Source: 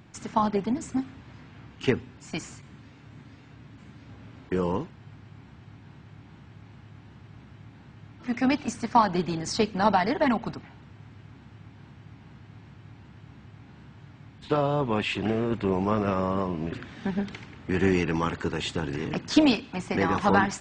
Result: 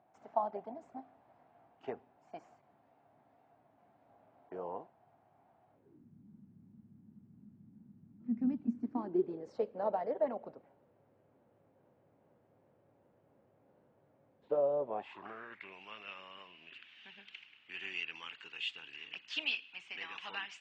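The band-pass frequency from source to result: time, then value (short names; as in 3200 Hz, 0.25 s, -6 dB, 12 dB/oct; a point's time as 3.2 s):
band-pass, Q 6.1
5.69 s 700 Hz
6.1 s 210 Hz
8.59 s 210 Hz
9.56 s 540 Hz
14.82 s 540 Hz
15.78 s 2800 Hz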